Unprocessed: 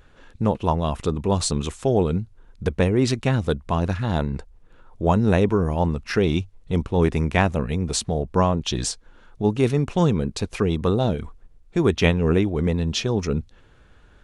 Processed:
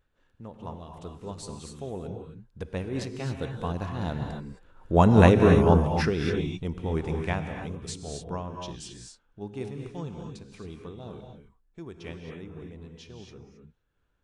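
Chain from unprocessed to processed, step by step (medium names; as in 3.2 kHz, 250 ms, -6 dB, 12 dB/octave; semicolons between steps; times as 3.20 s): Doppler pass-by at 5.35 s, 7 m/s, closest 2.9 m; gated-style reverb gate 290 ms rising, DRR 3 dB; random flutter of the level, depth 55%; trim +4 dB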